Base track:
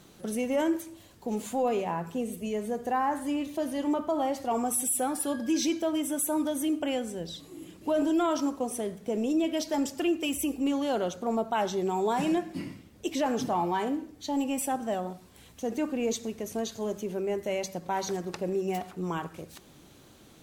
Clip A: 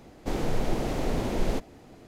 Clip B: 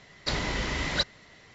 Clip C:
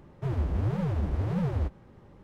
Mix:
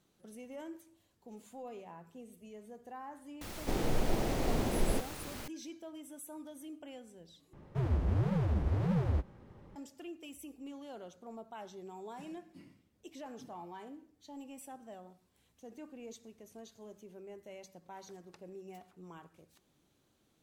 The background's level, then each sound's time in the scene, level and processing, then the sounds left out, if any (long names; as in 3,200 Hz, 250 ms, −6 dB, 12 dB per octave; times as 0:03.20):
base track −19 dB
0:03.41: mix in A −4 dB + background noise pink −41 dBFS
0:07.53: overwrite with C −2.5 dB
not used: B